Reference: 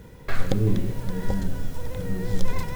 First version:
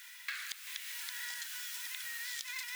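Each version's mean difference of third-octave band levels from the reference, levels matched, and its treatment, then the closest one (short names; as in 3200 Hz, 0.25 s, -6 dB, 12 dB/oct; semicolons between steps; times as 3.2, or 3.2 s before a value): 23.0 dB: inverse Chebyshev high-pass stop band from 400 Hz, stop band 70 dB; compressor 6:1, threshold -47 dBFS, peak gain reduction 14 dB; overloaded stage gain 35 dB; gain +9 dB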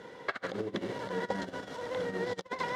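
8.5 dB: notch 2500 Hz, Q 8.7; negative-ratio compressor -22 dBFS, ratio -0.5; soft clip -15 dBFS, distortion -21 dB; BPF 430–4100 Hz; gain +2.5 dB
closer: second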